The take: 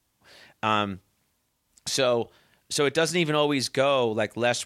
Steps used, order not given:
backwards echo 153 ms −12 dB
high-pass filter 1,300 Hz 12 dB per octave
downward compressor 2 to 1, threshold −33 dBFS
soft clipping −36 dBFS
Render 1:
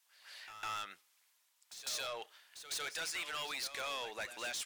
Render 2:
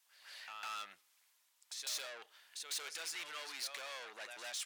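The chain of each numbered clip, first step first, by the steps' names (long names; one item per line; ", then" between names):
high-pass filter, then downward compressor, then soft clipping, then backwards echo
downward compressor, then backwards echo, then soft clipping, then high-pass filter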